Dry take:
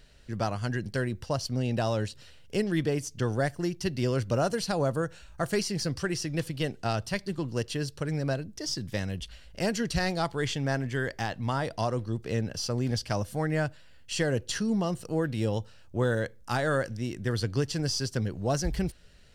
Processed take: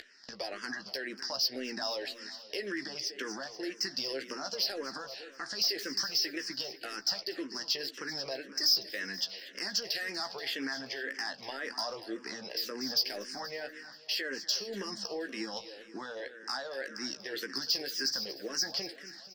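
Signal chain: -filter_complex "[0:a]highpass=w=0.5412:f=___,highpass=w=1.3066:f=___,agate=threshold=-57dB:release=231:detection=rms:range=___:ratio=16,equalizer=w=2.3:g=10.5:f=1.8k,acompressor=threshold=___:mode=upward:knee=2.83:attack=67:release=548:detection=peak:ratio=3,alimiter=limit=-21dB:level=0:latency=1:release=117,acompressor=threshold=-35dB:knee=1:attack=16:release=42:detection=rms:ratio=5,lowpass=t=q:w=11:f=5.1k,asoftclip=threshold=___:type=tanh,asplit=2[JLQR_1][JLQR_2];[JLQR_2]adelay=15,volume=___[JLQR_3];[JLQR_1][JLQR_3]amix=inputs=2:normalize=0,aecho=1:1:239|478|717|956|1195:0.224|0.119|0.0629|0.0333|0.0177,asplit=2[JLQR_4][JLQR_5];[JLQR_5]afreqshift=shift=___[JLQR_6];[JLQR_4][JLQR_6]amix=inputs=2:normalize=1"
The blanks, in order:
280, 280, -43dB, -41dB, -22dB, -8dB, -1.9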